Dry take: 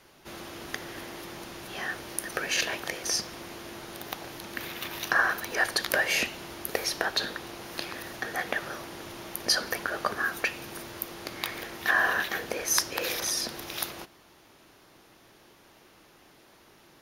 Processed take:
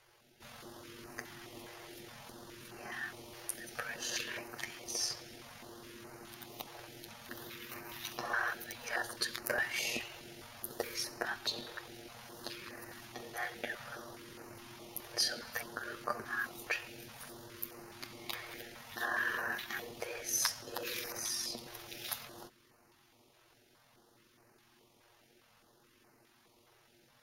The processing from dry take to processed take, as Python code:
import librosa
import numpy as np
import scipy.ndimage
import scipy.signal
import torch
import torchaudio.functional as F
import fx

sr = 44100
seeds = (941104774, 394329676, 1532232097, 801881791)

y = fx.stretch_grains(x, sr, factor=1.6, grain_ms=45.0)
y = fx.filter_held_notch(y, sr, hz=4.8, low_hz=240.0, high_hz=3400.0)
y = F.gain(torch.from_numpy(y), -7.0).numpy()